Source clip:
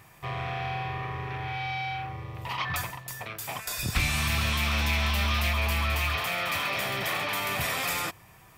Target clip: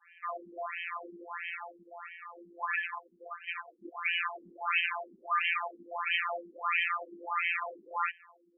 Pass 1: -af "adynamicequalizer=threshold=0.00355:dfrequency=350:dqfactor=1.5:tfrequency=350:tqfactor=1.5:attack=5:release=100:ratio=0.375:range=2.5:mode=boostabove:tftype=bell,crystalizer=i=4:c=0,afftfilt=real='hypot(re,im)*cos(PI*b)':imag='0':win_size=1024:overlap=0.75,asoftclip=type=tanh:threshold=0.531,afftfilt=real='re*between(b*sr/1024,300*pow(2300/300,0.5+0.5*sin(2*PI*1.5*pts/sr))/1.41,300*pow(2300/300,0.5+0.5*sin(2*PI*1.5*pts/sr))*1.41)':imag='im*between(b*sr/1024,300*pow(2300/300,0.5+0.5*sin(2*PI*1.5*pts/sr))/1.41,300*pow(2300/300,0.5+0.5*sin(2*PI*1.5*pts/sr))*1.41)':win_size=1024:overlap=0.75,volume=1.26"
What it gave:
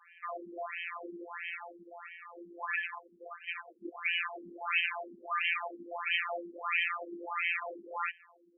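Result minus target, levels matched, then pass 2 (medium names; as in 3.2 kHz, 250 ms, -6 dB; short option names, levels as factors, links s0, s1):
250 Hz band +6.5 dB
-af "adynamicequalizer=threshold=0.00355:dfrequency=1100:dqfactor=1.5:tfrequency=1100:tqfactor=1.5:attack=5:release=100:ratio=0.375:range=2.5:mode=boostabove:tftype=bell,crystalizer=i=4:c=0,afftfilt=real='hypot(re,im)*cos(PI*b)':imag='0':win_size=1024:overlap=0.75,asoftclip=type=tanh:threshold=0.531,afftfilt=real='re*between(b*sr/1024,300*pow(2300/300,0.5+0.5*sin(2*PI*1.5*pts/sr))/1.41,300*pow(2300/300,0.5+0.5*sin(2*PI*1.5*pts/sr))*1.41)':imag='im*between(b*sr/1024,300*pow(2300/300,0.5+0.5*sin(2*PI*1.5*pts/sr))/1.41,300*pow(2300/300,0.5+0.5*sin(2*PI*1.5*pts/sr))*1.41)':win_size=1024:overlap=0.75,volume=1.26"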